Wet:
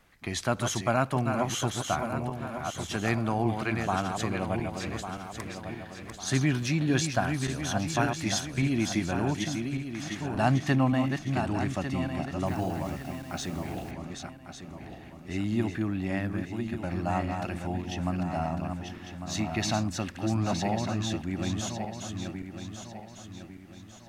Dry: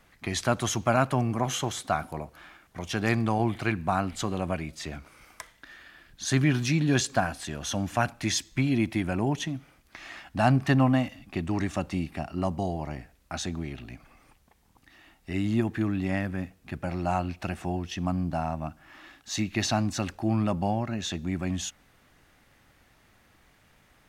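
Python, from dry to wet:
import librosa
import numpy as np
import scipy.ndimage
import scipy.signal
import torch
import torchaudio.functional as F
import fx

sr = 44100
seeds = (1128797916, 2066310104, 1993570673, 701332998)

y = fx.reverse_delay_fb(x, sr, ms=575, feedback_pct=62, wet_db=-5.5)
y = fx.quant_dither(y, sr, seeds[0], bits=8, dither='none', at=(12.46, 13.91))
y = y * librosa.db_to_amplitude(-2.5)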